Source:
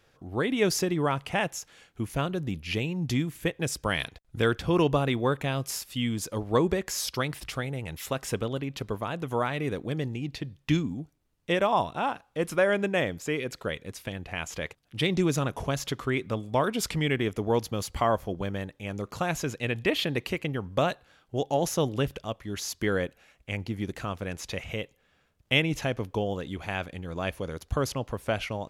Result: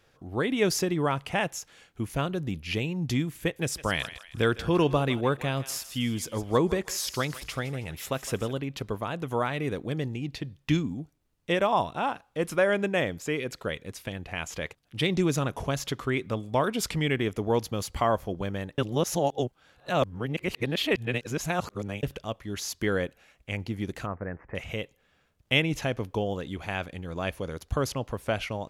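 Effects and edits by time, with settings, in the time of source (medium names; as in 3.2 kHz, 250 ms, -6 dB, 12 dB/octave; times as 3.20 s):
3.40–8.54 s: thinning echo 159 ms, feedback 46%, high-pass 940 Hz, level -13 dB
18.78–22.03 s: reverse
24.06–24.55 s: elliptic low-pass 1.9 kHz, stop band 50 dB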